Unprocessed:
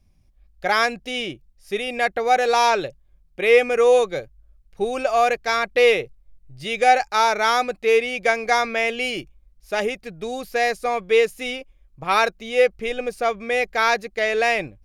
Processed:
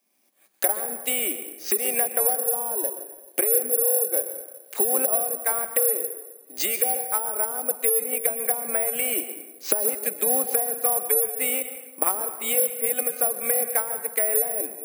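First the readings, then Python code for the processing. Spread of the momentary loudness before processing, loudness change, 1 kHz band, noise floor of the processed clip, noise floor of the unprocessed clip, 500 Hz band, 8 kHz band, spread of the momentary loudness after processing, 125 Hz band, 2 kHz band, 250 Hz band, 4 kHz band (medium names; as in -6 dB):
13 LU, -1.5 dB, -12.5 dB, -51 dBFS, -58 dBFS, -8.5 dB, +15.0 dB, 7 LU, under -15 dB, -13.0 dB, -6.0 dB, -11.0 dB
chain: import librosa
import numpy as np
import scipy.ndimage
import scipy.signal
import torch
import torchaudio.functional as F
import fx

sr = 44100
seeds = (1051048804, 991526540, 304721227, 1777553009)

p1 = fx.recorder_agc(x, sr, target_db=-12.0, rise_db_per_s=33.0, max_gain_db=30)
p2 = scipy.signal.sosfilt(scipy.signal.butter(8, 220.0, 'highpass', fs=sr, output='sos'), p1)
p3 = fx.env_lowpass_down(p2, sr, base_hz=370.0, full_db=-14.5)
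p4 = fx.low_shelf(p3, sr, hz=320.0, db=-11.5)
p5 = 10.0 ** (-27.0 / 20.0) * np.tanh(p4 / 10.0 ** (-27.0 / 20.0))
p6 = p4 + (p5 * librosa.db_to_amplitude(-7.0))
p7 = fx.rev_plate(p6, sr, seeds[0], rt60_s=1.2, hf_ratio=0.55, predelay_ms=110, drr_db=9.5)
p8 = (np.kron(scipy.signal.resample_poly(p7, 1, 4), np.eye(4)[0]) * 4)[:len(p7)]
y = p8 * librosa.db_to_amplitude(-5.0)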